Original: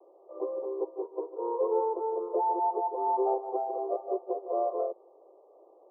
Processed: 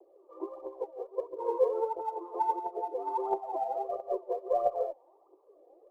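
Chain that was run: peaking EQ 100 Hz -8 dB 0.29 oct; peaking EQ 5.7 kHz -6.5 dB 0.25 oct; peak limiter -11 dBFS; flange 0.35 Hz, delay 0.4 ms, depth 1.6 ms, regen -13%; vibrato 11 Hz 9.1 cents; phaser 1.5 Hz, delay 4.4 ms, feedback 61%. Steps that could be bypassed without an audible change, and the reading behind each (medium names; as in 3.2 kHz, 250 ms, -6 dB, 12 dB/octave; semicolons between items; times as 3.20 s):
peaking EQ 100 Hz: input has nothing below 290 Hz; peaking EQ 5.7 kHz: input has nothing above 1.1 kHz; peak limiter -11 dBFS: peak at its input -16.5 dBFS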